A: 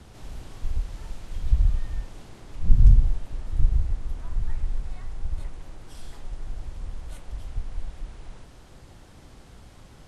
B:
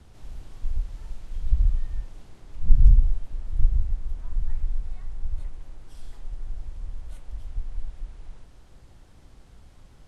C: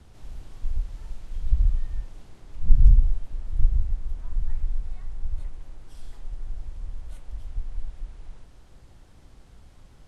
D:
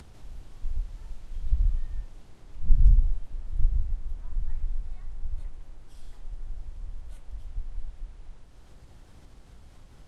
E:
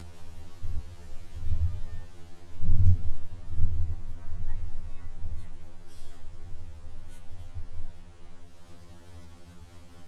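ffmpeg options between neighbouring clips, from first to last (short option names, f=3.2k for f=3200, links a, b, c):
-af "lowshelf=f=61:g=9.5,volume=-7dB"
-af anull
-af "acompressor=mode=upward:threshold=-38dB:ratio=2.5,volume=-3.5dB"
-af "afftfilt=real='re*2*eq(mod(b,4),0)':imag='im*2*eq(mod(b,4),0)':win_size=2048:overlap=0.75,volume=6.5dB"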